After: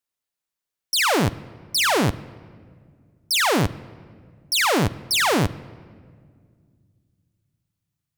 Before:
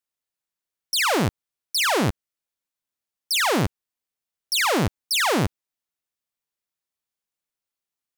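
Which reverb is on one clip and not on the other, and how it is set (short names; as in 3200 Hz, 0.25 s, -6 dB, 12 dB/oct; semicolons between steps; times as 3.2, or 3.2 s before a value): shoebox room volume 3400 m³, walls mixed, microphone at 0.31 m; gain +1.5 dB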